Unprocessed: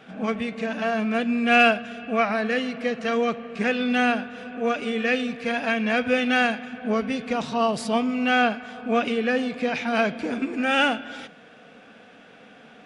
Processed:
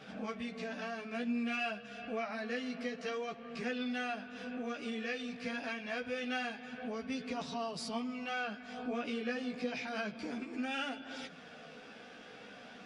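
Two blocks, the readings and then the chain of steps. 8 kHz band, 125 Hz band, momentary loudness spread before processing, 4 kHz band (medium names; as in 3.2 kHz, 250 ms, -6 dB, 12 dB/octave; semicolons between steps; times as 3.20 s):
-10.5 dB, -14.0 dB, 8 LU, -13.5 dB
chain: peaking EQ 5 kHz +8 dB 0.66 oct; compression 2.5:1, threshold -39 dBFS, peak gain reduction 17.5 dB; chorus voices 2, 0.27 Hz, delay 14 ms, depth 2.7 ms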